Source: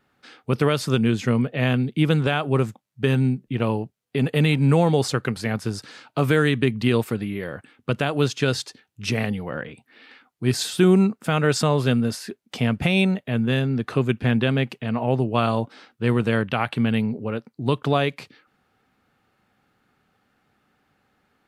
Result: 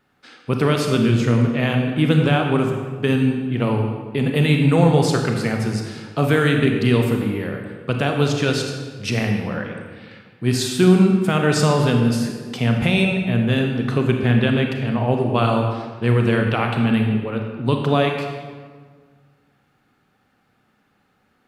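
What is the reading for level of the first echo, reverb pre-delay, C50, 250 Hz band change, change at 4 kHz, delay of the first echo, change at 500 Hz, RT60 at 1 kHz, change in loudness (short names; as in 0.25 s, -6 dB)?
none, 30 ms, 4.0 dB, +3.5 dB, +2.5 dB, none, +3.0 dB, 1.5 s, +3.0 dB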